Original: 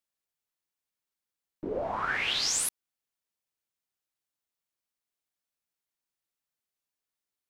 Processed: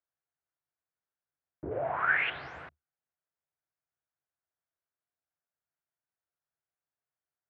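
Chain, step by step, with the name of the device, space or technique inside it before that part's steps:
0:01.71–0:02.30: meter weighting curve D
sub-octave bass pedal (sub-octave generator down 2 octaves, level −6 dB; loudspeaker in its box 73–2,000 Hz, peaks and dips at 76 Hz +7 dB, 140 Hz +8 dB, 220 Hz −10 dB, 690 Hz +6 dB, 1,500 Hz +5 dB)
level −3 dB

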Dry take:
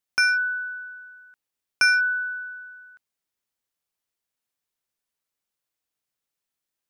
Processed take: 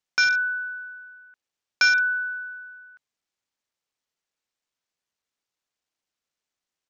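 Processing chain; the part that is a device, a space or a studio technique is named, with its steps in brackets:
Bluetooth headset (high-pass filter 220 Hz 6 dB per octave; downsampling to 16,000 Hz; SBC 64 kbit/s 48,000 Hz)

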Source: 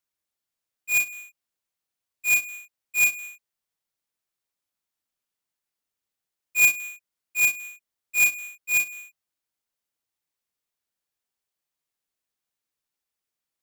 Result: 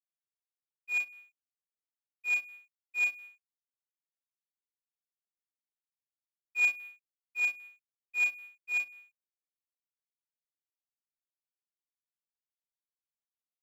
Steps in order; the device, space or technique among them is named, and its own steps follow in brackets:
phone line with mismatched companding (band-pass filter 380–3,400 Hz; mu-law and A-law mismatch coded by A)
level −6.5 dB

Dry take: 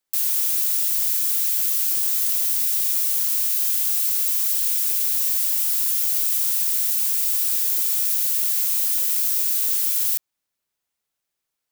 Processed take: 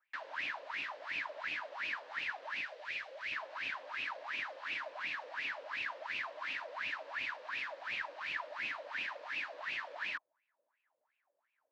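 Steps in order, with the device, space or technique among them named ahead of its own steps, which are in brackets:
wah-wah guitar rig (LFO wah 2.8 Hz 500–2,600 Hz, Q 11; tube saturation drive 47 dB, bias 0.25; loudspeaker in its box 95–3,800 Hz, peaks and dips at 140 Hz −4 dB, 290 Hz +10 dB, 610 Hz +10 dB, 980 Hz +8 dB, 1,700 Hz +6 dB, 3,400 Hz −3 dB)
0:02.61–0:03.32: octave-band graphic EQ 250/500/1,000 Hz −11/+5/−9 dB
level +16.5 dB

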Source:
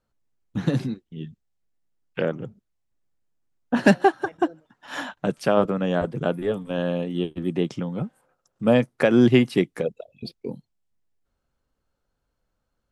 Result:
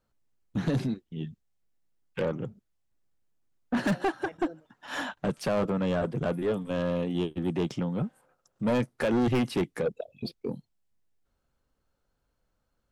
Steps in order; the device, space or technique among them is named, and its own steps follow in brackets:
0:09.86–0:10.40: dynamic equaliser 400 Hz, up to +5 dB, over −37 dBFS, Q 0.78
saturation between pre-emphasis and de-emphasis (high-shelf EQ 2,200 Hz +11.5 dB; soft clipping −21 dBFS, distortion −5 dB; high-shelf EQ 2,200 Hz −11.5 dB)

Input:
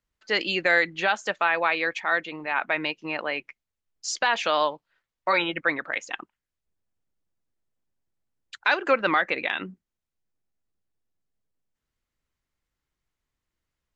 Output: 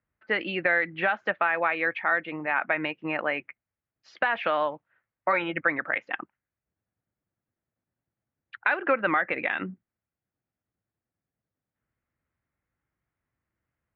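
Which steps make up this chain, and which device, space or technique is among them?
dynamic equaliser 4,100 Hz, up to +6 dB, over −41 dBFS, Q 0.85
bass amplifier (downward compressor 3 to 1, threshold −23 dBFS, peak gain reduction 7.5 dB; loudspeaker in its box 74–2,100 Hz, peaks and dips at 110 Hz +5 dB, 420 Hz −4 dB, 990 Hz −4 dB)
level +3.5 dB

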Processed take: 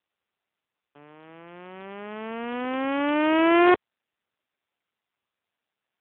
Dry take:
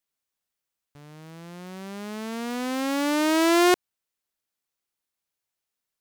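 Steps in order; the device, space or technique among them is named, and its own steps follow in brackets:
telephone (band-pass filter 280–3,100 Hz; level +3 dB; AMR narrowband 5.9 kbit/s 8,000 Hz)

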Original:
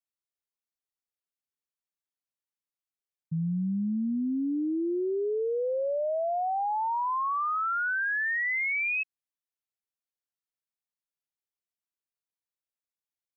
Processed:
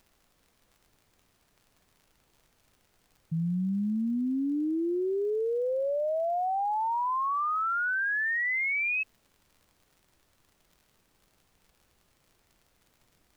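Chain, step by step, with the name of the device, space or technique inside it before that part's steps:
vinyl LP (surface crackle; pink noise bed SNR 37 dB)

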